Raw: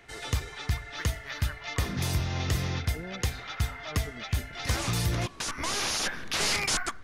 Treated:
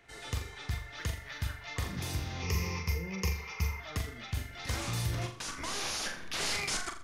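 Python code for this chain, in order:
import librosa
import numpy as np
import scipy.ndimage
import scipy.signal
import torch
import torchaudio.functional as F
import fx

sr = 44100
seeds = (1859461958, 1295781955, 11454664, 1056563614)

y = fx.ripple_eq(x, sr, per_octave=0.81, db=16, at=(2.42, 3.8))
y = fx.room_flutter(y, sr, wall_m=7.2, rt60_s=0.39)
y = F.gain(torch.from_numpy(y), -7.0).numpy()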